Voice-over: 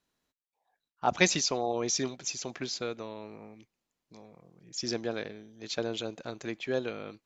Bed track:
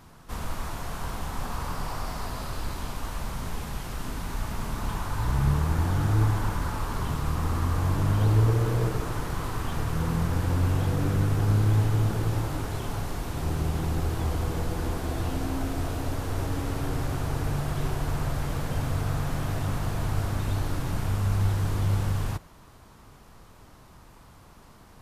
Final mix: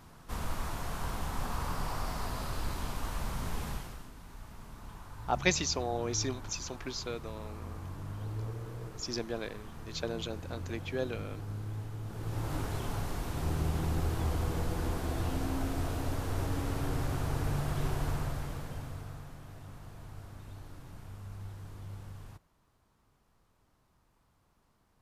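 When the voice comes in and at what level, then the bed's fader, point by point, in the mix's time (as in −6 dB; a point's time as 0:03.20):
4.25 s, −3.5 dB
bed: 0:03.71 −3 dB
0:04.11 −17 dB
0:12.02 −17 dB
0:12.54 −4 dB
0:18.07 −4 dB
0:19.39 −19.5 dB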